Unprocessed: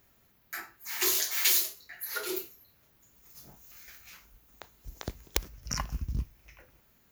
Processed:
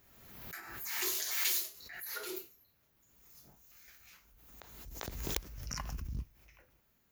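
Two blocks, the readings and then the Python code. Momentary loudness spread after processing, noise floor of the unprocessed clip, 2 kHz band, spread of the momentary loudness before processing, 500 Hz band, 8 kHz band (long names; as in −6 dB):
23 LU, −66 dBFS, −5.5 dB, 23 LU, −6.5 dB, −7.0 dB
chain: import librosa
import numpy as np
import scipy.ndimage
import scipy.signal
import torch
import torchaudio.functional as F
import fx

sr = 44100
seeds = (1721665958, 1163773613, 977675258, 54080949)

y = fx.pre_swell(x, sr, db_per_s=42.0)
y = y * 10.0 ** (-8.0 / 20.0)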